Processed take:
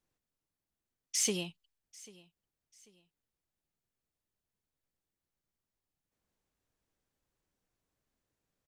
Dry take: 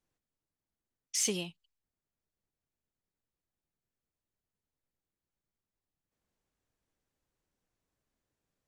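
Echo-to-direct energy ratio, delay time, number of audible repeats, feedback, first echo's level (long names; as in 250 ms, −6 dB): −21.5 dB, 792 ms, 2, 34%, −22.0 dB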